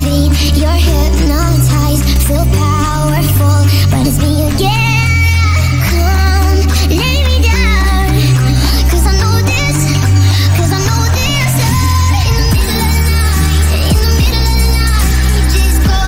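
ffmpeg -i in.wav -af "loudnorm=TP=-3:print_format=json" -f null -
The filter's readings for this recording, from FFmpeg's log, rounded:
"input_i" : "-10.8",
"input_tp" : "-1.0",
"input_lra" : "0.6",
"input_thresh" : "-20.8",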